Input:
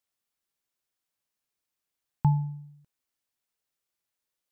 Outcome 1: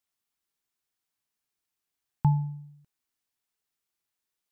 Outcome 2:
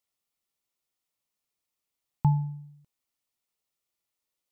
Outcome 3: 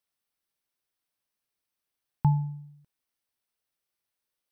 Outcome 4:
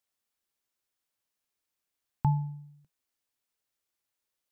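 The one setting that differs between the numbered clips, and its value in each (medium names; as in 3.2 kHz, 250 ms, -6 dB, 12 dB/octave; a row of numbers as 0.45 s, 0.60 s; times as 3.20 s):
band-stop, frequency: 550 Hz, 1.6 kHz, 7 kHz, 160 Hz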